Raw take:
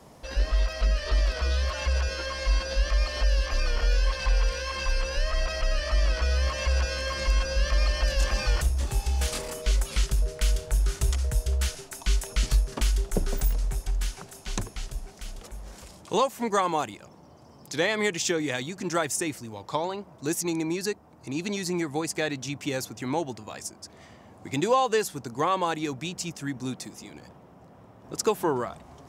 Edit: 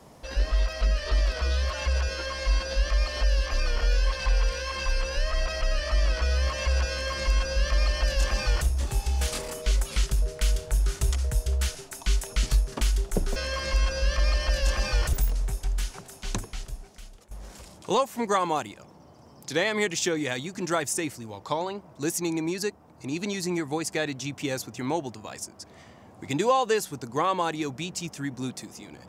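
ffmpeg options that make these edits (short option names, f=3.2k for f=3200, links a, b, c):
-filter_complex "[0:a]asplit=4[a][b][c][d];[a]atrim=end=13.362[e];[b]atrim=start=6.898:end=8.672[f];[c]atrim=start=13.358:end=15.54,asetpts=PTS-STARTPTS,afade=t=out:st=1.352:d=0.83:silence=0.188365[g];[d]atrim=start=15.54,asetpts=PTS-STARTPTS,afade=t=in:d=0.004:c=hsin:silence=0.188365[h];[e][f]acrossfade=d=0.004:c1=hsin:c2=hsin[i];[g][h]concat=n=2:v=0:a=1[j];[i][j]acrossfade=d=0.004:c1=hsin:c2=hsin"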